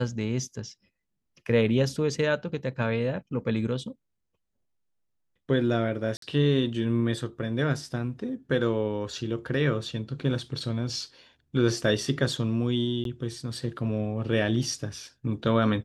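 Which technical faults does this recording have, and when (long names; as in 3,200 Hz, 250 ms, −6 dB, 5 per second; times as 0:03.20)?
0:06.17–0:06.22: drop-out 53 ms
0:13.04–0:13.05: drop-out 12 ms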